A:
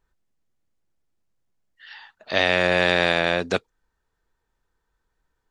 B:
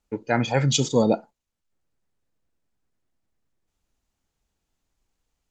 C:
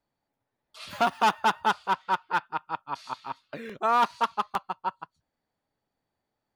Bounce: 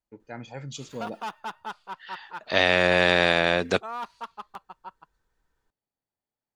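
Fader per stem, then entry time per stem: -0.5, -17.0, -12.0 dB; 0.20, 0.00, 0.00 s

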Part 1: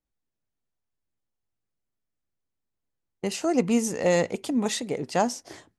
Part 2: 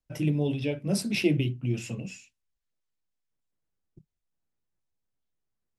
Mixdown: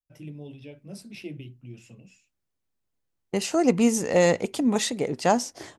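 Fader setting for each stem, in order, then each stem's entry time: +2.5, -14.0 dB; 0.10, 0.00 s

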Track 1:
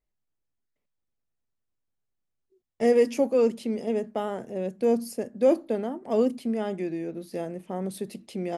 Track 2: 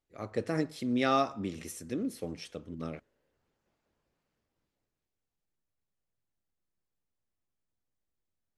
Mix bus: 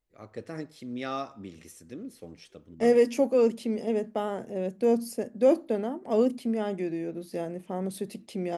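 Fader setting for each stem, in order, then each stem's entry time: -0.5, -6.5 dB; 0.00, 0.00 s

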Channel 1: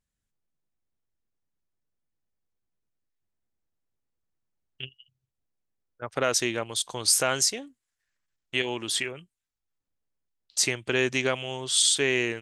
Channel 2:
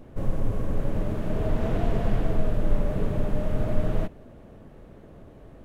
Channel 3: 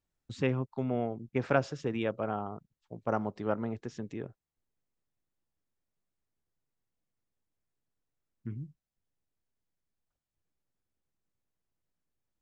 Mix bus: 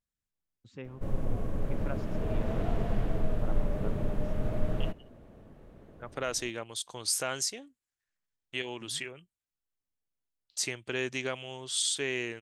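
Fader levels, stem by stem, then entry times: -8.0, -5.5, -14.0 dB; 0.00, 0.85, 0.35 s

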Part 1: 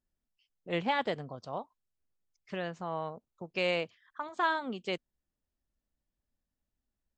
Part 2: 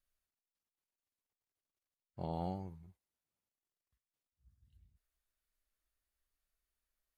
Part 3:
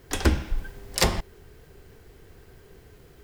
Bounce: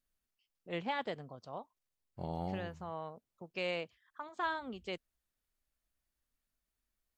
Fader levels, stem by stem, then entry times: -6.5 dB, 0.0 dB, off; 0.00 s, 0.00 s, off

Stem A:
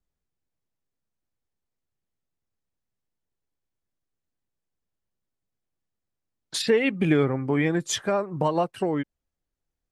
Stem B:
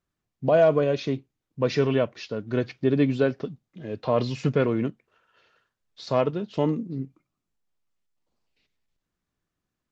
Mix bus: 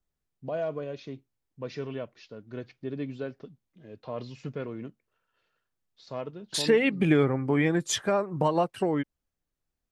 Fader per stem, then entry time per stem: -1.0, -13.0 dB; 0.00, 0.00 s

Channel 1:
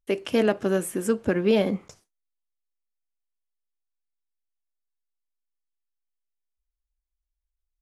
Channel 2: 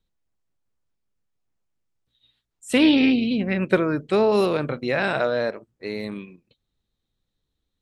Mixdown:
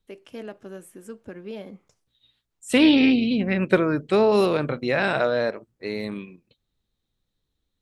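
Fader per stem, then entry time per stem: -15.5, +0.5 dB; 0.00, 0.00 s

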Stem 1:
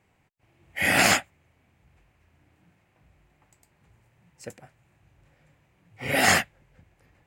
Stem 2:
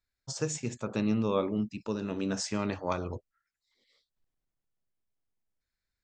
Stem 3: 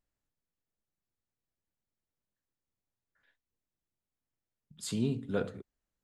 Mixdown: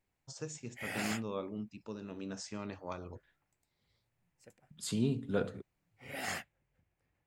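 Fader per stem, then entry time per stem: -19.0, -10.5, -0.5 dB; 0.00, 0.00, 0.00 s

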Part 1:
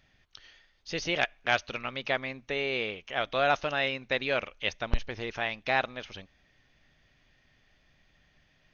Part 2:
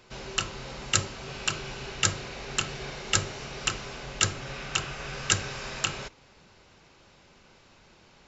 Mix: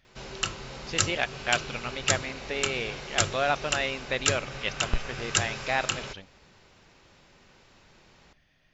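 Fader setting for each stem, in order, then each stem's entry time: -0.5, -1.0 dB; 0.00, 0.05 s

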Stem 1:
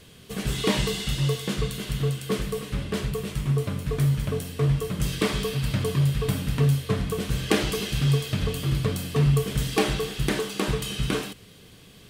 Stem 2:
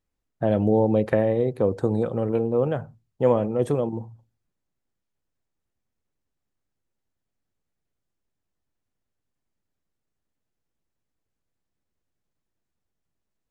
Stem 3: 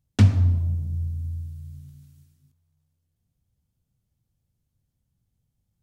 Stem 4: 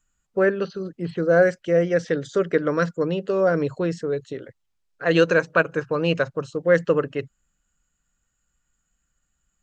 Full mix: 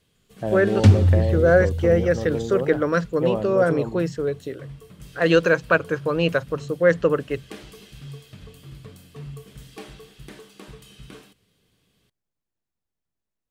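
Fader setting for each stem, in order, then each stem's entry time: -17.0, -4.5, +2.5, +0.5 dB; 0.00, 0.00, 0.65, 0.15 s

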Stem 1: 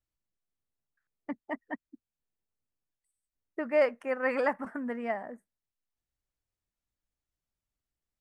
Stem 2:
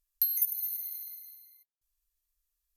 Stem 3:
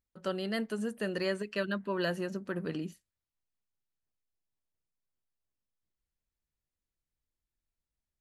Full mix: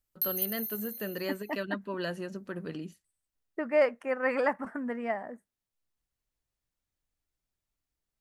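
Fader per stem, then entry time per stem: +0.5, -3.5, -2.5 dB; 0.00, 0.00, 0.00 s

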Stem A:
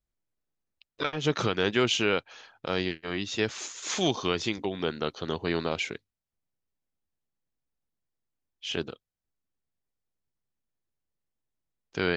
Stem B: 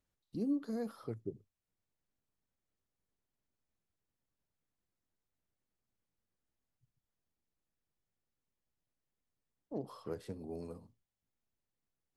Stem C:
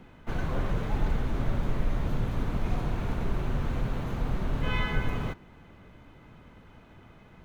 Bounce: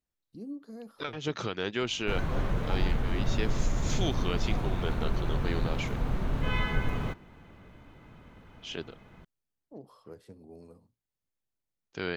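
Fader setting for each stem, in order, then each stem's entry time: -6.5, -6.0, -0.5 dB; 0.00, 0.00, 1.80 s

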